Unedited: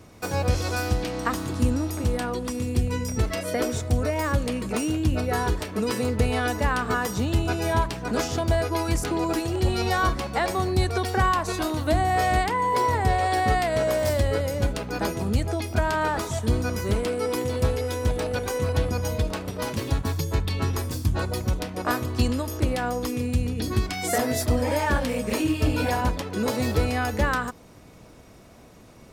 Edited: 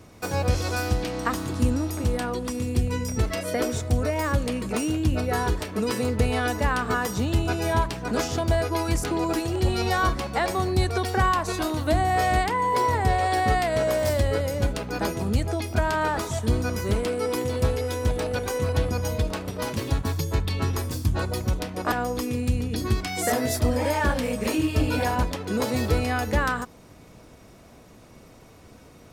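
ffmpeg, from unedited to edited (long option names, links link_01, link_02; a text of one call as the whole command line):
ffmpeg -i in.wav -filter_complex "[0:a]asplit=2[link_01][link_02];[link_01]atrim=end=21.922[link_03];[link_02]atrim=start=22.778[link_04];[link_03][link_04]acrossfade=duration=0.004:curve1=hsin:curve2=hsin" out.wav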